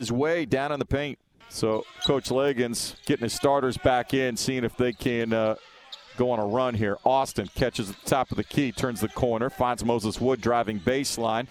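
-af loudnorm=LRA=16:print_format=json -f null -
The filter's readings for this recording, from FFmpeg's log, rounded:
"input_i" : "-26.1",
"input_tp" : "-7.4",
"input_lra" : "1.0",
"input_thresh" : "-36.3",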